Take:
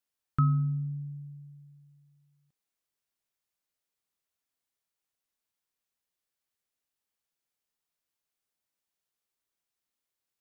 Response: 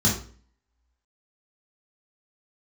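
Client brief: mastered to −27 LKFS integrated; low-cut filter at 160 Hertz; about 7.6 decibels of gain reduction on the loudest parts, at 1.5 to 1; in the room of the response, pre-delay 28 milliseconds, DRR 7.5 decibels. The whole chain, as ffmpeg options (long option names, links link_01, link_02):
-filter_complex "[0:a]highpass=160,acompressor=threshold=-45dB:ratio=1.5,asplit=2[link_01][link_02];[1:a]atrim=start_sample=2205,adelay=28[link_03];[link_02][link_03]afir=irnorm=-1:irlink=0,volume=-20.5dB[link_04];[link_01][link_04]amix=inputs=2:normalize=0,volume=9dB"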